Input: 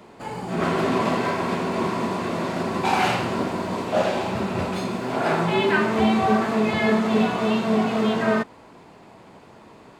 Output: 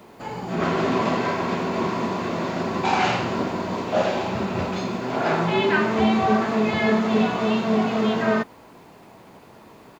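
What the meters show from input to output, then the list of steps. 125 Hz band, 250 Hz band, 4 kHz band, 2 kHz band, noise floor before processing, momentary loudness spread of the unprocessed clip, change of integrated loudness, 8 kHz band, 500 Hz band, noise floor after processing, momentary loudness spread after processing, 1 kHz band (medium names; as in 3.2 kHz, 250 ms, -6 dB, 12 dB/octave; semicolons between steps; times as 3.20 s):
0.0 dB, 0.0 dB, 0.0 dB, 0.0 dB, -48 dBFS, 6 LU, 0.0 dB, -2.0 dB, 0.0 dB, -48 dBFS, 6 LU, 0.0 dB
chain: resampled via 16 kHz; word length cut 10-bit, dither none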